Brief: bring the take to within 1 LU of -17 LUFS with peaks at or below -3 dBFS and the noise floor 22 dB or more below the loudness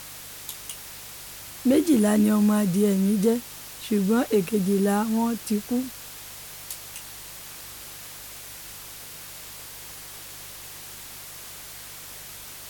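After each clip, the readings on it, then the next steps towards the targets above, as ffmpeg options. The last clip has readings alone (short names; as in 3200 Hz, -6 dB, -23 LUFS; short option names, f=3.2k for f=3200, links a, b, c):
hum 50 Hz; harmonics up to 150 Hz; hum level -54 dBFS; noise floor -41 dBFS; noise floor target -46 dBFS; loudness -24.0 LUFS; peak -10.0 dBFS; loudness target -17.0 LUFS
-> -af "bandreject=f=50:t=h:w=4,bandreject=f=100:t=h:w=4,bandreject=f=150:t=h:w=4"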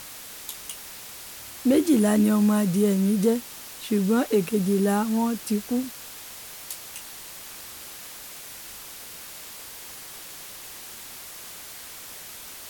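hum none; noise floor -41 dBFS; noise floor target -46 dBFS
-> -af "afftdn=nr=6:nf=-41"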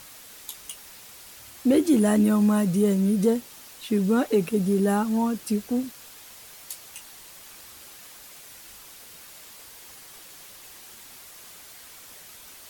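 noise floor -47 dBFS; loudness -23.0 LUFS; peak -10.0 dBFS; loudness target -17.0 LUFS
-> -af "volume=6dB"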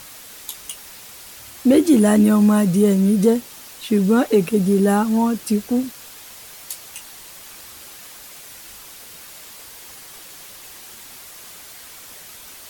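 loudness -17.0 LUFS; peak -4.0 dBFS; noise floor -41 dBFS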